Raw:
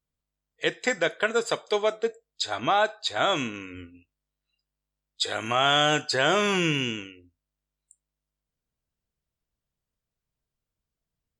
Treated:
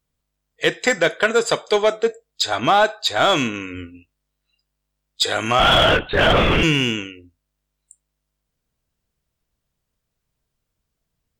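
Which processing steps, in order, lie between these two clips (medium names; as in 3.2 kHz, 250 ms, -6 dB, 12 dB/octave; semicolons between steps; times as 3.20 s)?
5.59–6.63 s: LPC vocoder at 8 kHz whisper; in parallel at -4.5 dB: overload inside the chain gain 24.5 dB; on the sum: trim +5 dB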